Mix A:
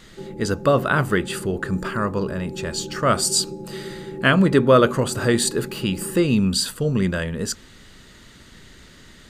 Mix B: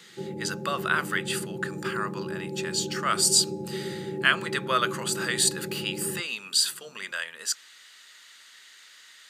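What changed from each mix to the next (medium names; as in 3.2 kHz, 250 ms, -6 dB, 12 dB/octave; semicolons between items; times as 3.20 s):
speech: add high-pass 1.5 kHz 12 dB/octave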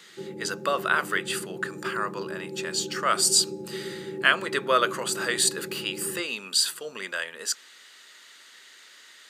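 background -10.0 dB; master: add peaking EQ 380 Hz +9 dB 2.1 oct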